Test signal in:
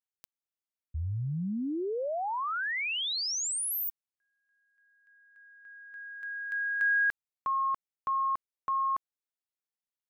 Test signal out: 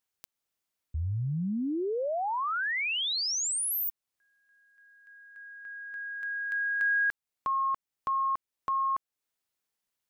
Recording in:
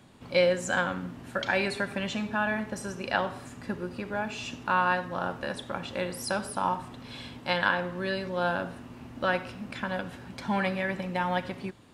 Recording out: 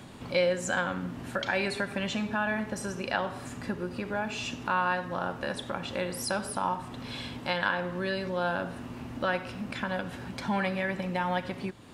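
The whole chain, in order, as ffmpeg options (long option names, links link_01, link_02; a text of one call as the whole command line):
ffmpeg -i in.wav -af "acompressor=threshold=-51dB:ratio=1.5:attack=3.1:release=228:knee=1:detection=rms,volume=9dB" out.wav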